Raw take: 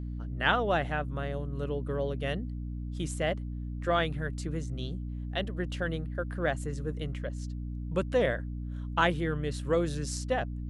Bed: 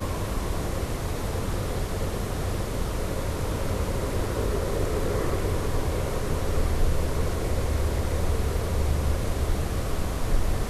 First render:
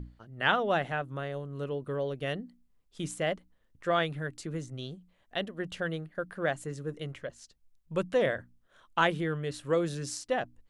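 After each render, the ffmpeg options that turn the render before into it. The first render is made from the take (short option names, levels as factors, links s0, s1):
-af "bandreject=f=60:t=h:w=6,bandreject=f=120:t=h:w=6,bandreject=f=180:t=h:w=6,bandreject=f=240:t=h:w=6,bandreject=f=300:t=h:w=6"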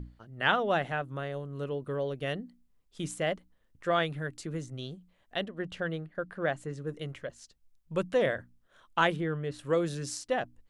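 -filter_complex "[0:a]asettb=1/sr,asplit=3[s0][s1][s2];[s0]atrim=end=5.444[s3];[s1]atrim=start=5.44:end=6.87,asetpts=PTS-STARTPTS,afade=t=in:d=0.004:c=qsin,afade=t=out:st=1.426:d=0.004:c=qsin,lowpass=f=3800:p=1[s4];[s2]atrim=start=6.866[s5];[s3][s4]acrossfade=d=0.004:c1=hsin:c2=qsin[s6];[s6][s5]acrossfade=d=0.004:c1=qsin:c2=hsin,asettb=1/sr,asplit=3[s7][s8][s9];[s7]atrim=end=9.164[s10];[s8]atrim=start=9.16:end=9.59,asetpts=PTS-STARTPTS,afade=t=in:d=0.004:c=qsin,afade=t=out:st=0.426:d=0.004:c=qsin,highshelf=f=3100:g=-10[s11];[s9]atrim=start=9.586[s12];[s10][s11]acrossfade=d=0.004:c1=hsin:c2=qsin[s13];[s13][s12]acrossfade=d=0.004:c1=qsin:c2=hsin"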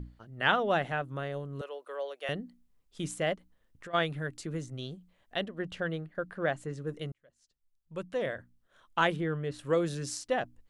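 -filter_complex "[0:a]asettb=1/sr,asplit=3[s0][s1][s2];[s0]atrim=end=1.614[s3];[s1]atrim=start=1.61:end=2.29,asetpts=PTS-STARTPTS,afade=t=in:d=0.004:c=qsin,afade=t=out:st=0.676:d=0.004:c=qsin,highpass=f=530:w=0.5412,highpass=f=530:w=1.3066[s4];[s2]atrim=start=2.286[s5];[s3][s4]acrossfade=d=0.004:c1=hsin:c2=qsin[s6];[s6][s5]acrossfade=d=0.004:c1=qsin:c2=hsin,asplit=3[s7][s8][s9];[s7]afade=t=out:st=3.34:d=0.02[s10];[s8]acompressor=threshold=0.00891:ratio=16:attack=3.2:release=140:knee=1:detection=peak,afade=t=in:st=3.34:d=0.02,afade=t=out:st=3.93:d=0.02[s11];[s9]afade=t=in:st=3.93:d=0.02[s12];[s10][s11][s12]amix=inputs=3:normalize=0,asplit=2[s13][s14];[s13]atrim=end=7.12,asetpts=PTS-STARTPTS,afade=t=out:st=7.116:d=0.004:c=hsin[s15];[s14]atrim=start=7.12,asetpts=PTS-STARTPTS,afade=t=in:d=2.16[s16];[s15][s16]concat=n=2:v=0:a=1"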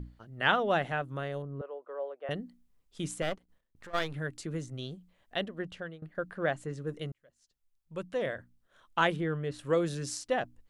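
-filter_complex "[0:a]asettb=1/sr,asplit=3[s0][s1][s2];[s0]atrim=end=1.424[s3];[s1]atrim=start=1.42:end=2.31,asetpts=PTS-STARTPTS,afade=t=in:d=0.004:c=qsin,afade=t=out:st=0.886:d=0.004:c=qsin,lowpass=1100[s4];[s2]atrim=start=2.306[s5];[s3][s4]acrossfade=d=0.004:c1=hsin:c2=qsin[s6];[s6][s5]acrossfade=d=0.004:c1=qsin:c2=hsin,asettb=1/sr,asplit=3[s7][s8][s9];[s7]atrim=end=3.224[s10];[s8]atrim=start=3.22:end=4.14,asetpts=PTS-STARTPTS,afade=t=in:d=0.004:c=qsin,afade=t=out:st=0.916:d=0.004:c=qsin,aeval=exprs='if(lt(val(0),0),0.251*val(0),val(0))':c=same[s11];[s9]atrim=start=4.136[s12];[s10][s11]acrossfade=d=0.004:c1=hsin:c2=qsin[s13];[s13][s12]acrossfade=d=0.004:c1=qsin:c2=hsin,asplit=2[s14][s15];[s14]atrim=end=6.02,asetpts=PTS-STARTPTS,afade=t=out:st=5.54:d=0.48:silence=0.105925[s16];[s15]atrim=start=6.02,asetpts=PTS-STARTPTS,afade=t=in:d=0.004:c=hsin:silence=0.105925[s17];[s16][s17]concat=n=2:v=0:a=1"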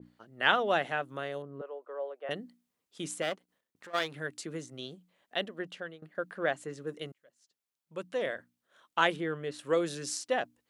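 -af "highpass=240,adynamicequalizer=threshold=0.00631:dfrequency=1900:dqfactor=0.7:tfrequency=1900:tqfactor=0.7:attack=5:release=100:ratio=0.375:range=1.5:mode=boostabove:tftype=highshelf"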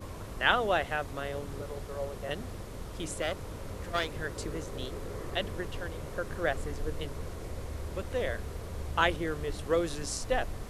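-filter_complex "[1:a]volume=0.224[s0];[0:a][s0]amix=inputs=2:normalize=0"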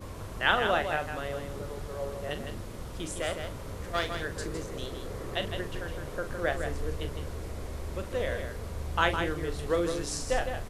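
-filter_complex "[0:a]asplit=2[s0][s1];[s1]adelay=41,volume=0.316[s2];[s0][s2]amix=inputs=2:normalize=0,aecho=1:1:159:0.447"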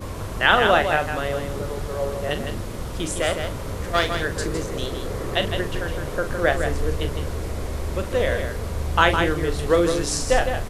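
-af "volume=2.99,alimiter=limit=0.794:level=0:latency=1"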